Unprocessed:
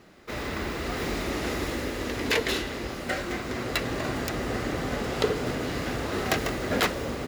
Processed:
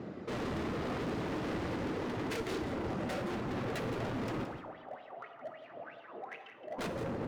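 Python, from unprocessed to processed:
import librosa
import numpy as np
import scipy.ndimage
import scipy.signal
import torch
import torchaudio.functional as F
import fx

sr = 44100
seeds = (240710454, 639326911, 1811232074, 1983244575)

y = scipy.signal.sosfilt(scipy.signal.butter(2, 5500.0, 'lowpass', fs=sr, output='sos'), x)
y = fx.dereverb_blind(y, sr, rt60_s=1.4)
y = scipy.signal.sosfilt(scipy.signal.butter(4, 95.0, 'highpass', fs=sr, output='sos'), y)
y = fx.tilt_shelf(y, sr, db=9.5, hz=1100.0)
y = fx.rider(y, sr, range_db=5, speed_s=0.5)
y = 10.0 ** (-22.5 / 20.0) * np.tanh(y / 10.0 ** (-22.5 / 20.0))
y = fx.wah_lfo(y, sr, hz=fx.line((4.43, 5.3), (6.78, 1.7)), low_hz=620.0, high_hz=3400.0, q=9.5, at=(4.43, 6.78), fade=0.02)
y = np.clip(y, -10.0 ** (-36.5 / 20.0), 10.0 ** (-36.5 / 20.0))
y = y + 10.0 ** (-10.5 / 20.0) * np.pad(y, (int(170 * sr / 1000.0), 0))[:len(y)]
y = fx.rev_plate(y, sr, seeds[0], rt60_s=1.2, hf_ratio=0.6, predelay_ms=0, drr_db=6.5)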